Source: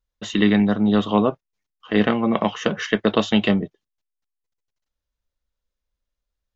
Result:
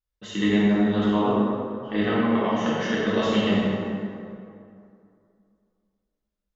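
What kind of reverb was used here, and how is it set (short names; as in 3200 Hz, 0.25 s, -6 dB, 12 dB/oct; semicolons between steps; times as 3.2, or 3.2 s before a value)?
plate-style reverb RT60 2.5 s, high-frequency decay 0.55×, DRR -8.5 dB; gain -11.5 dB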